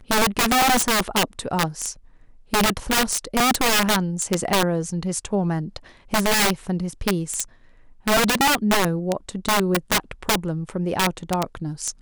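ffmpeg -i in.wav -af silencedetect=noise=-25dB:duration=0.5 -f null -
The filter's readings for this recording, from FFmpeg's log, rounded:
silence_start: 1.91
silence_end: 2.53 | silence_duration: 0.63
silence_start: 7.43
silence_end: 8.07 | silence_duration: 0.64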